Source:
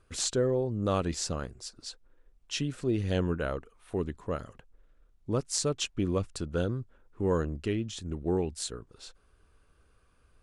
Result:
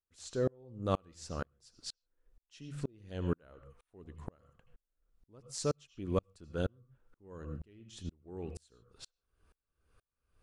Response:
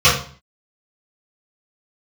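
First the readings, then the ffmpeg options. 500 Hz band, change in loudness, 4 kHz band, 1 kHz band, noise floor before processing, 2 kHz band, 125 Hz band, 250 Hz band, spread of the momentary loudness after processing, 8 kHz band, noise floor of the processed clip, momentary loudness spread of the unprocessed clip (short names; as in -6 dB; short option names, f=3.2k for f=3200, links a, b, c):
-8.0 dB, -8.0 dB, -12.5 dB, -6.5 dB, -66 dBFS, -10.5 dB, -8.0 dB, -9.5 dB, 19 LU, -13.5 dB, under -85 dBFS, 14 LU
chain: -filter_complex "[0:a]asplit=2[a][b];[1:a]atrim=start_sample=2205,atrim=end_sample=3528,adelay=73[c];[b][c]afir=irnorm=-1:irlink=0,volume=-38.5dB[d];[a][d]amix=inputs=2:normalize=0,aeval=exprs='val(0)*pow(10,-38*if(lt(mod(-2.1*n/s,1),2*abs(-2.1)/1000),1-mod(-2.1*n/s,1)/(2*abs(-2.1)/1000),(mod(-2.1*n/s,1)-2*abs(-2.1)/1000)/(1-2*abs(-2.1)/1000))/20)':c=same"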